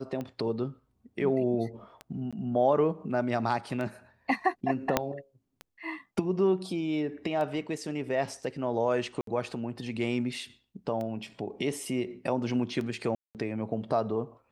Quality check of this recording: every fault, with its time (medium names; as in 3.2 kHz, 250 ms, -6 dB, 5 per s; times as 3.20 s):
tick 33 1/3 rpm -24 dBFS
2.31–2.33 s: dropout 16 ms
4.97 s: pop -8 dBFS
9.21–9.27 s: dropout 63 ms
13.15–13.35 s: dropout 198 ms